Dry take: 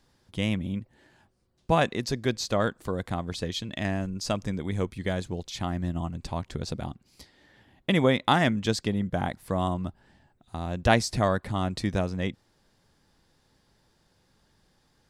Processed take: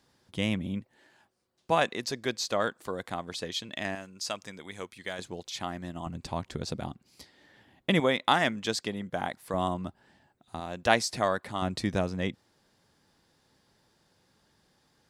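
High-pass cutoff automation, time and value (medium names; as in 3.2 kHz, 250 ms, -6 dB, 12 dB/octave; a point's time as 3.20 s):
high-pass 6 dB/octave
140 Hz
from 0.81 s 490 Hz
from 3.95 s 1.3 kHz
from 5.19 s 480 Hz
from 6.06 s 140 Hz
from 8.00 s 500 Hz
from 9.54 s 220 Hz
from 10.60 s 480 Hz
from 11.62 s 130 Hz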